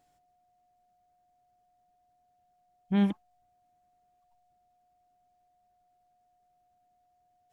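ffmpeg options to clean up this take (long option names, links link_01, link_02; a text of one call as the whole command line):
ffmpeg -i in.wav -af "bandreject=frequency=720:width=30" out.wav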